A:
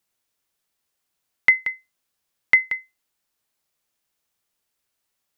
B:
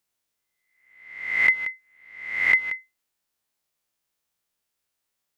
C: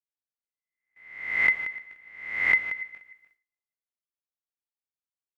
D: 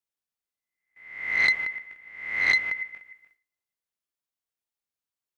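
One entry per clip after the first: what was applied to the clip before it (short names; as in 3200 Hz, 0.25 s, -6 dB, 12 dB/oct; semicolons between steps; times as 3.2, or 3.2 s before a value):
spectral swells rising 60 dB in 0.81 s; gain -5 dB
regenerating reverse delay 0.149 s, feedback 41%, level -14 dB; gate with hold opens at -47 dBFS; high shelf 3000 Hz -8.5 dB
core saturation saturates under 2000 Hz; gain +2.5 dB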